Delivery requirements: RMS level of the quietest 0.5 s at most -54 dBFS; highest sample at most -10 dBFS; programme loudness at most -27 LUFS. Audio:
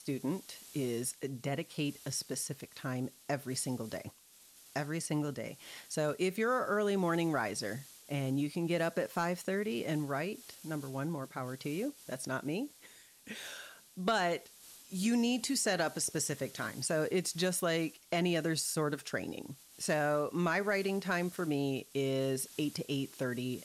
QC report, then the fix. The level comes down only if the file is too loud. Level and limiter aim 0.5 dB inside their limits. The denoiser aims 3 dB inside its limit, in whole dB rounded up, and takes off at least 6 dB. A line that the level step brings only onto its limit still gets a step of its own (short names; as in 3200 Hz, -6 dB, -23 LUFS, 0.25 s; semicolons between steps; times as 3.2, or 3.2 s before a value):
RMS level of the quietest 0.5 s -60 dBFS: OK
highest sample -21.5 dBFS: OK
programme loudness -35.0 LUFS: OK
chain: none